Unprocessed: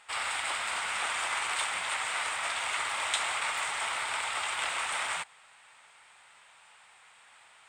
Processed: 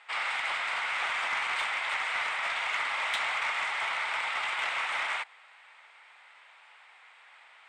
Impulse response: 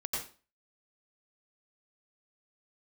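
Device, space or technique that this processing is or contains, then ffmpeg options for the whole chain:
intercom: -af "highpass=440,lowpass=3.9k,equalizer=f=2.1k:t=o:w=0.36:g=4.5,asoftclip=type=tanh:threshold=-23dB,volume=1.5dB"

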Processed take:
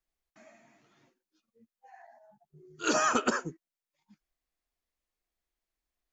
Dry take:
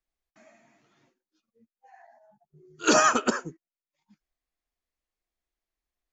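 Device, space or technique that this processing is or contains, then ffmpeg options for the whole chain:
de-esser from a sidechain: -filter_complex "[0:a]asplit=2[a][b];[b]highpass=4.7k,apad=whole_len=270016[c];[a][c]sidechaincompress=threshold=-36dB:ratio=3:attack=3.6:release=50"

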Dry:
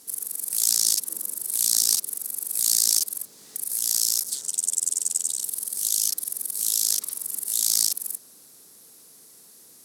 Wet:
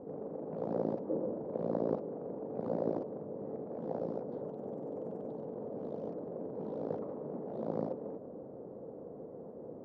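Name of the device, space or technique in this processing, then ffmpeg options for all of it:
under water: -af "lowpass=f=720:w=0.5412,lowpass=f=720:w=1.3066,equalizer=f=530:t=o:w=0.42:g=8.5,volume=15.5dB"

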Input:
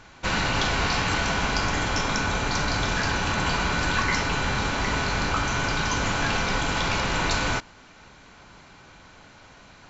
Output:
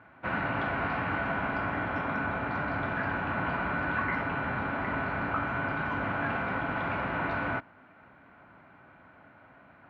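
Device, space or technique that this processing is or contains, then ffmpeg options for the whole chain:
bass cabinet: -af "highpass=f=69:w=0.5412,highpass=f=69:w=1.3066,equalizer=f=79:t=q:w=4:g=-4,equalizer=f=270:t=q:w=4:g=5,equalizer=f=440:t=q:w=4:g=-3,equalizer=f=650:t=q:w=4:g=6,equalizer=f=1.4k:t=q:w=4:g=4,lowpass=f=2.2k:w=0.5412,lowpass=f=2.2k:w=1.3066,volume=-6.5dB"

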